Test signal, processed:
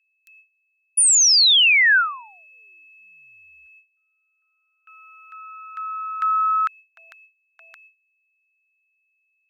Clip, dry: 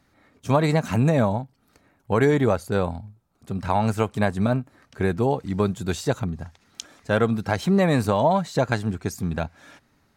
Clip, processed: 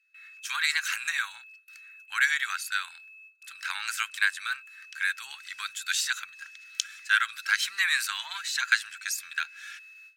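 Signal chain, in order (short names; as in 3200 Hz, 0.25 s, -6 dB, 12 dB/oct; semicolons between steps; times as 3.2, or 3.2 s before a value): whine 2600 Hz -54 dBFS; gate with hold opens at -48 dBFS; elliptic high-pass 1500 Hz, stop band 60 dB; gain +7.5 dB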